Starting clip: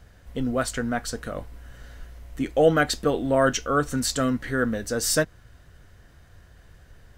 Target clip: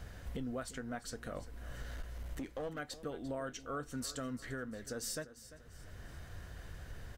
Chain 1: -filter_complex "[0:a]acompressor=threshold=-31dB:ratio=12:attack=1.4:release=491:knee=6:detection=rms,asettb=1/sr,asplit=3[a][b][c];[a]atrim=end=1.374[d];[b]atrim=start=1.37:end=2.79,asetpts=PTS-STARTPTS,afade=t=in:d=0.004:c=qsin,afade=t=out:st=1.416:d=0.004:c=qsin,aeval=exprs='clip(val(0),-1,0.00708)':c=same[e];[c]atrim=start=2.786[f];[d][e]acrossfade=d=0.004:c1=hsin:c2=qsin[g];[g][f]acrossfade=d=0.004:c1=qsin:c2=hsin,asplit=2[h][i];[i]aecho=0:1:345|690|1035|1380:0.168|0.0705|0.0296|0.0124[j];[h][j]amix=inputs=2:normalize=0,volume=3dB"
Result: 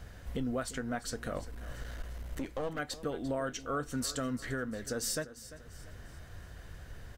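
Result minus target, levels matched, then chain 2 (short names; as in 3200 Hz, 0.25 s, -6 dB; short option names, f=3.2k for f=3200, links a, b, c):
compressor: peak gain reduction -6 dB
-filter_complex "[0:a]acompressor=threshold=-37.5dB:ratio=12:attack=1.4:release=491:knee=6:detection=rms,asettb=1/sr,asplit=3[a][b][c];[a]atrim=end=1.374[d];[b]atrim=start=1.37:end=2.79,asetpts=PTS-STARTPTS,afade=t=in:d=0.004:c=qsin,afade=t=out:st=1.416:d=0.004:c=qsin,aeval=exprs='clip(val(0),-1,0.00708)':c=same[e];[c]atrim=start=2.786[f];[d][e]acrossfade=d=0.004:c1=hsin:c2=qsin[g];[g][f]acrossfade=d=0.004:c1=qsin:c2=hsin,asplit=2[h][i];[i]aecho=0:1:345|690|1035|1380:0.168|0.0705|0.0296|0.0124[j];[h][j]amix=inputs=2:normalize=0,volume=3dB"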